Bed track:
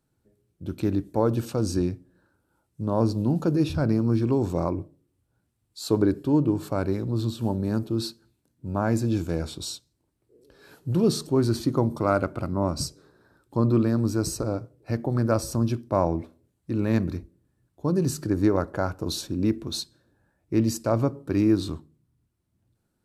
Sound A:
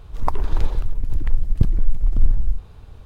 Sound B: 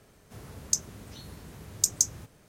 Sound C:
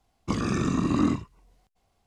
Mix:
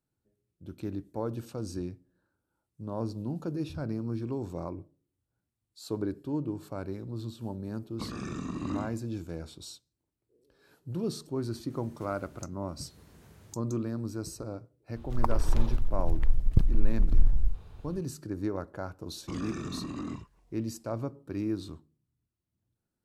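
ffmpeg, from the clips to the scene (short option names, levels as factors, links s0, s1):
-filter_complex "[3:a]asplit=2[s0][s1];[0:a]volume=0.282[s2];[2:a]acompressor=threshold=0.00316:ratio=5:attack=15:release=808:knee=1:detection=peak[s3];[s1]alimiter=limit=0.0708:level=0:latency=1:release=70[s4];[s0]atrim=end=2.06,asetpts=PTS-STARTPTS,volume=0.282,afade=t=in:d=0.004:c=hsin,afade=t=out:st=2.056:d=0.004:c=hsin,adelay=7710[s5];[s3]atrim=end=2.48,asetpts=PTS-STARTPTS,volume=0.841,afade=t=in:d=0.004:c=hsin,afade=t=out:st=2.476:d=0.004:c=hsin,adelay=515970S[s6];[1:a]atrim=end=3.05,asetpts=PTS-STARTPTS,volume=0.531,afade=t=in:d=0.004:c=hsin,afade=t=out:st=3.046:d=0.004:c=hsin,adelay=14960[s7];[s4]atrim=end=2.06,asetpts=PTS-STARTPTS,volume=0.501,afade=t=in:d=0.004:c=hsin,afade=t=out:st=2.056:d=0.004:c=hsin,adelay=19000[s8];[s2][s5][s6][s7][s8]amix=inputs=5:normalize=0"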